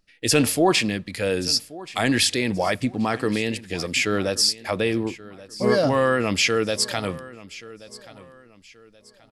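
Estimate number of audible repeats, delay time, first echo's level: 2, 1.129 s, -19.0 dB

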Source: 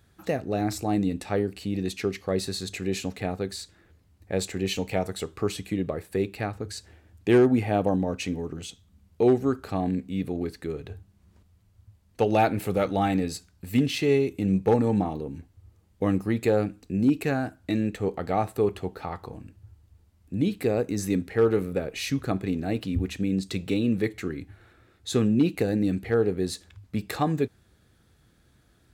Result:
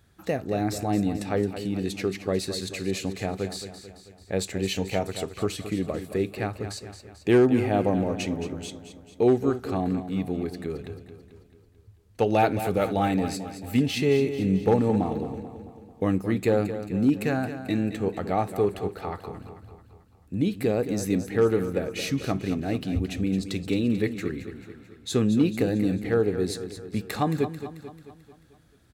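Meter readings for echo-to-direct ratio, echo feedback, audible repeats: -9.5 dB, 53%, 5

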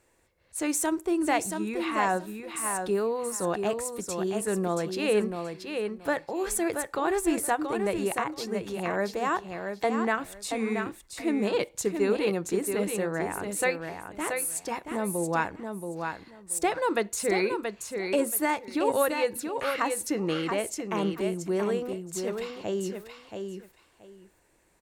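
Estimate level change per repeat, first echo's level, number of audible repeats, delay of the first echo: -14.5 dB, -6.0 dB, 2, 0.678 s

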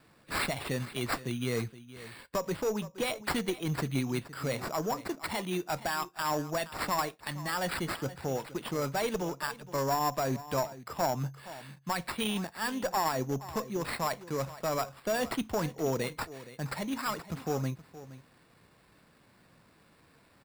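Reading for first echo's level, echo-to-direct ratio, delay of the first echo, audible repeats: -16.0 dB, -16.0 dB, 0.47 s, 1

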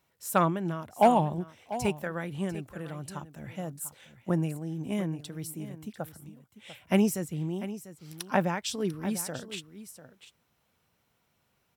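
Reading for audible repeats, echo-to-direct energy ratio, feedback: 1, -14.0 dB, no steady repeat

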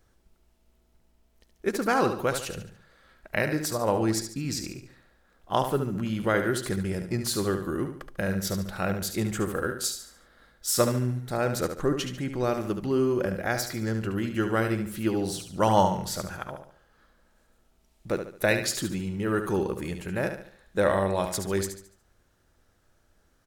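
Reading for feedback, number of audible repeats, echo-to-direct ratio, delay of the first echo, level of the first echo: 40%, 4, -7.5 dB, 72 ms, -8.0 dB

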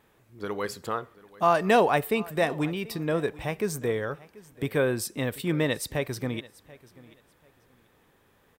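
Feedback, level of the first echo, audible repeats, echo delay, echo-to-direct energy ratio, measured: 22%, -21.0 dB, 2, 0.736 s, -21.0 dB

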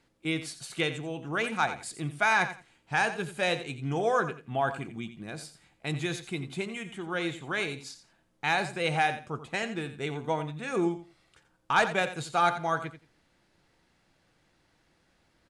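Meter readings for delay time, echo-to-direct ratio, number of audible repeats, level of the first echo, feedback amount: 87 ms, -12.0 dB, 2, -12.0 dB, 19%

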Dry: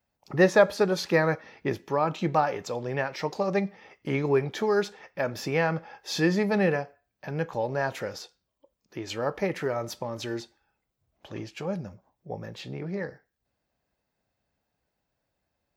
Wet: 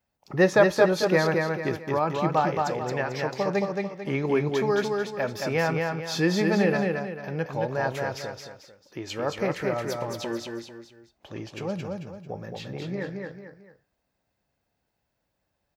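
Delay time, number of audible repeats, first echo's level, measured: 0.222 s, 3, -3.5 dB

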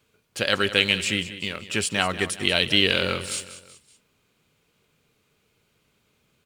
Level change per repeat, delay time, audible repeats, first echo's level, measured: -7.0 dB, 0.189 s, 3, -14.0 dB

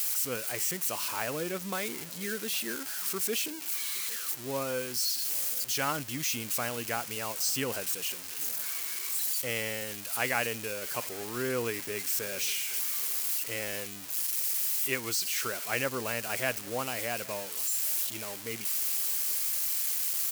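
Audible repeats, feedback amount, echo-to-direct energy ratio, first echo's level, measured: 2, 32%, -22.5 dB, -23.0 dB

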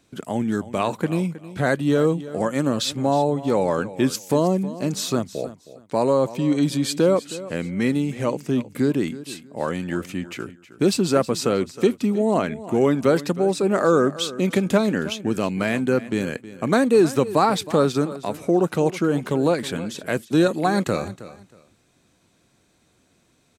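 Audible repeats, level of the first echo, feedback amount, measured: 2, -16.0 dB, 23%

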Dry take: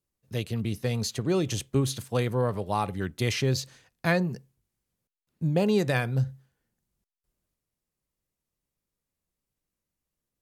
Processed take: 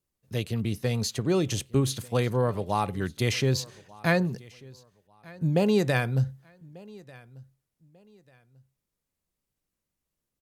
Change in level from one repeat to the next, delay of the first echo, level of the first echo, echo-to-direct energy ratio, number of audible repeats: -11.0 dB, 1.192 s, -23.0 dB, -22.5 dB, 2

